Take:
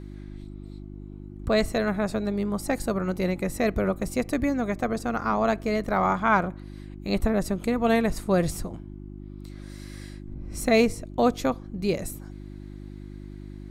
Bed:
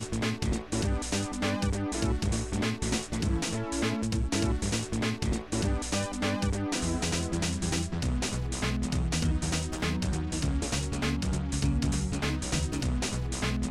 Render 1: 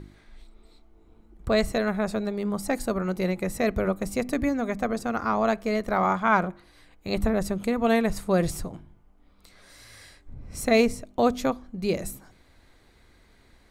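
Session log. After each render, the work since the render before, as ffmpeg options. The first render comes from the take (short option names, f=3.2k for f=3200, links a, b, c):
-af "bandreject=f=50:t=h:w=4,bandreject=f=100:t=h:w=4,bandreject=f=150:t=h:w=4,bandreject=f=200:t=h:w=4,bandreject=f=250:t=h:w=4,bandreject=f=300:t=h:w=4,bandreject=f=350:t=h:w=4"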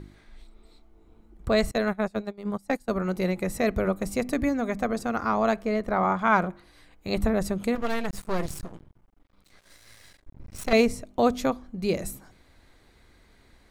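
-filter_complex "[0:a]asettb=1/sr,asplit=3[a][b][c];[a]atrim=end=1.714[d];[b]atrim=start=1.71:end=2.9,asetpts=PTS-STARTPTS,afade=t=in:d=0.004:c=qsin,afade=t=out:st=1.186:d=0.004:c=qsin,agate=range=-22dB:threshold=-28dB:ratio=16:release=100:detection=peak[e];[c]atrim=start=2.896[f];[d][e]acrossfade=d=0.004:c1=hsin:c2=qsin[g];[g][f]acrossfade=d=0.004:c1=qsin:c2=hsin,asettb=1/sr,asplit=3[h][i][j];[h]atrim=end=5.624[k];[i]atrim=start=5.62:end=6.19,asetpts=PTS-STARTPTS,afade=t=in:d=0.004:c=qsin,afade=t=out:st=0.566:d=0.004:c=qsin,highshelf=f=3.1k:g=-9[l];[j]atrim=start=6.186[m];[k][l]acrossfade=d=0.004:c1=hsin:c2=qsin[n];[n][m]acrossfade=d=0.004:c1=qsin:c2=hsin,asettb=1/sr,asplit=3[o][p][q];[o]atrim=end=7.754[r];[p]atrim=start=7.75:end=10.73,asetpts=PTS-STARTPTS,afade=t=in:d=0.004:c=qsin,afade=t=out:st=2.976:d=0.004:c=qsin,aeval=exprs='max(val(0),0)':c=same[s];[q]atrim=start=10.726[t];[r][s]acrossfade=d=0.004:c1=hsin:c2=qsin[u];[u][t]acrossfade=d=0.004:c1=qsin:c2=hsin"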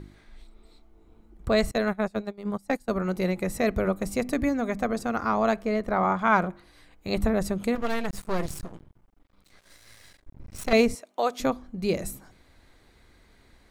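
-filter_complex "[0:a]asettb=1/sr,asplit=3[a][b][c];[a]atrim=end=10.954[d];[b]atrim=start=10.95:end=11.4,asetpts=PTS-STARTPTS,afade=t=in:d=0.004:c=qsin,afade=t=out:st=0.446:d=0.004:c=qsin,highpass=580[e];[c]atrim=start=11.396[f];[d][e]acrossfade=d=0.004:c1=hsin:c2=qsin[g];[g][f]acrossfade=d=0.004:c1=qsin:c2=hsin"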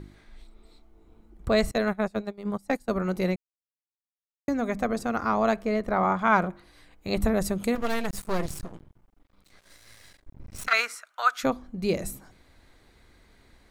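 -filter_complex "[0:a]asettb=1/sr,asplit=3[a][b][c];[a]atrim=end=7.224[d];[b]atrim=start=7.22:end=8.38,asetpts=PTS-STARTPTS,afade=t=in:d=0.004:c=qsin,afade=t=out:st=1.156:d=0.004:c=qsin,highshelf=f=5.9k:g=6.5[e];[c]atrim=start=8.376[f];[d][e]acrossfade=d=0.004:c1=hsin:c2=qsin[g];[g][f]acrossfade=d=0.004:c1=qsin:c2=hsin,asplit=3[h][i][j];[h]afade=t=out:st=10.66:d=0.02[k];[i]highpass=f=1.4k:t=q:w=8.1,afade=t=in:st=10.66:d=0.02,afade=t=out:st=11.43:d=0.02[l];[j]afade=t=in:st=11.43:d=0.02[m];[k][l][m]amix=inputs=3:normalize=0,asplit=3[n][o][p];[n]atrim=end=3.36,asetpts=PTS-STARTPTS,afade=t=out:st=3.356:d=0.004:c=hsin[q];[o]atrim=start=3.36:end=4.48,asetpts=PTS-STARTPTS,volume=0[r];[p]atrim=start=4.48,asetpts=PTS-STARTPTS,afade=t=in:d=0.004:c=hsin[s];[q][r][s]concat=n=3:v=0:a=1"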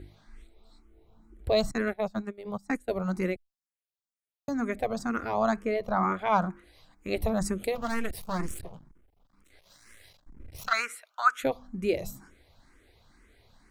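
-filter_complex "[0:a]asplit=2[a][b];[b]afreqshift=2.1[c];[a][c]amix=inputs=2:normalize=1"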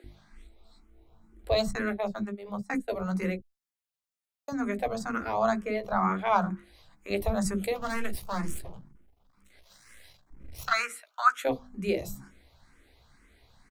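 -filter_complex "[0:a]asplit=2[a][b];[b]adelay=15,volume=-9dB[c];[a][c]amix=inputs=2:normalize=0,acrossover=split=370[d][e];[d]adelay=40[f];[f][e]amix=inputs=2:normalize=0"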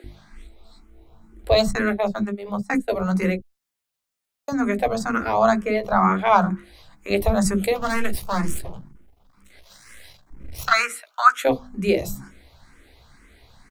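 -af "volume=8.5dB,alimiter=limit=-3dB:level=0:latency=1"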